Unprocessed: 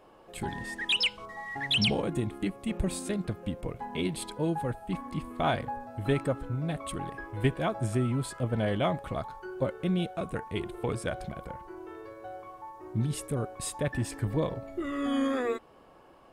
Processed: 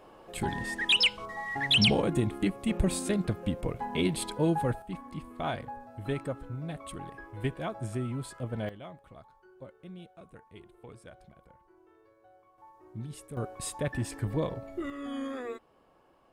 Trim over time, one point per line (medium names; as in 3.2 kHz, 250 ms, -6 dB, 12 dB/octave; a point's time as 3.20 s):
+3 dB
from 4.82 s -5.5 dB
from 8.69 s -17.5 dB
from 12.58 s -10.5 dB
from 13.37 s -1.5 dB
from 14.90 s -8 dB